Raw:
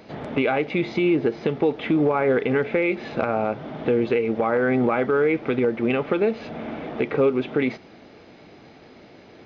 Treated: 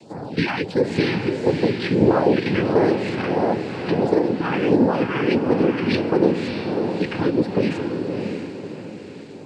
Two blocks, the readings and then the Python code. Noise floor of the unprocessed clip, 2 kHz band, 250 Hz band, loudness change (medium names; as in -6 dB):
-48 dBFS, 0.0 dB, +4.0 dB, +2.0 dB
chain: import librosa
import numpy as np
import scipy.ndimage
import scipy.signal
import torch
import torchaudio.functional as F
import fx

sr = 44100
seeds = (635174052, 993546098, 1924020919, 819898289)

y = fx.noise_vocoder(x, sr, seeds[0], bands=8)
y = fx.phaser_stages(y, sr, stages=2, low_hz=490.0, high_hz=2900.0, hz=1.5, feedback_pct=15)
y = fx.echo_diffused(y, sr, ms=612, feedback_pct=42, wet_db=-4.5)
y = y * 10.0 ** (4.0 / 20.0)